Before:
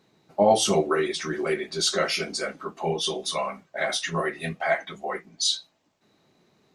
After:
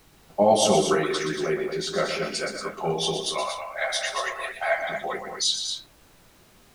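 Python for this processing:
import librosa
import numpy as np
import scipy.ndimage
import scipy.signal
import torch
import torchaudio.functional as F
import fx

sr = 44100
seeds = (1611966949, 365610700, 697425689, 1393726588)

y = fx.high_shelf(x, sr, hz=3100.0, db=-12.0, at=(1.41, 2.32))
y = fx.highpass(y, sr, hz=570.0, slope=24, at=(3.26, 4.78))
y = fx.dmg_noise_colour(y, sr, seeds[0], colour='pink', level_db=-57.0)
y = fx.echo_multitap(y, sr, ms=(122, 199, 231), db=(-8.0, -16.5, -7.5))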